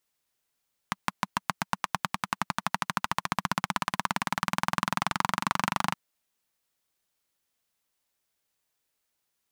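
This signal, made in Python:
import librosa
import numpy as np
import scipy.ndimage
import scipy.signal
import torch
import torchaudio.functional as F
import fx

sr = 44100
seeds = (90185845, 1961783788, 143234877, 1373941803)

y = fx.engine_single_rev(sr, seeds[0], length_s=5.02, rpm=700, resonances_hz=(190.0, 1000.0), end_rpm=3000)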